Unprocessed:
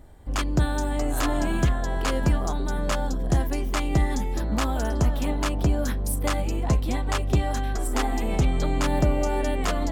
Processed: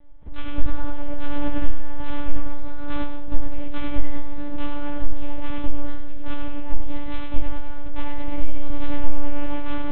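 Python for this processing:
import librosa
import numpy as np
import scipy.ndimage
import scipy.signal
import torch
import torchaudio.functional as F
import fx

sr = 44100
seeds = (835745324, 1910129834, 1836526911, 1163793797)

y = np.minimum(x, 2.0 * 10.0 ** (-25.0 / 20.0) - x)
y = fx.low_shelf(y, sr, hz=190.0, db=7.0)
y = fx.echo_feedback(y, sr, ms=98, feedback_pct=43, wet_db=-6)
y = fx.room_shoebox(y, sr, seeds[0], volume_m3=110.0, walls='mixed', distance_m=1.2)
y = fx.lpc_monotone(y, sr, seeds[1], pitch_hz=290.0, order=10)
y = y * 10.0 ** (-7.5 / 20.0)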